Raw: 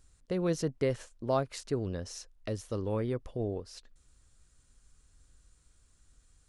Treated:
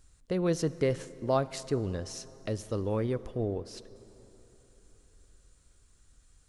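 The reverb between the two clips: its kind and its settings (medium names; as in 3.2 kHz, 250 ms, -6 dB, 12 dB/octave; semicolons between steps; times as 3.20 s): plate-style reverb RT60 3.9 s, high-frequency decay 0.65×, DRR 16 dB; trim +2 dB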